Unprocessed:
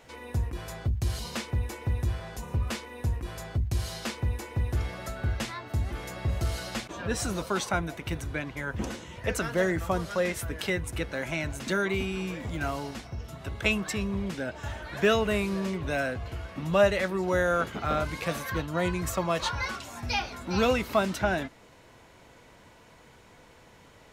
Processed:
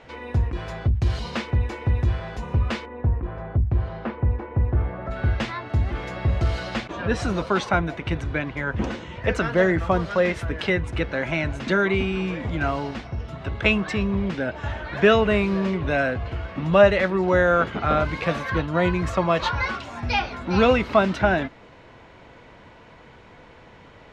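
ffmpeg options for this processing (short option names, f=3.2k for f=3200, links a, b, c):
-filter_complex "[0:a]asplit=3[a][b][c];[a]afade=t=out:st=2.85:d=0.02[d];[b]lowpass=1.3k,afade=t=in:st=2.85:d=0.02,afade=t=out:st=5.1:d=0.02[e];[c]afade=t=in:st=5.1:d=0.02[f];[d][e][f]amix=inputs=3:normalize=0,lowpass=3.3k,volume=7dB"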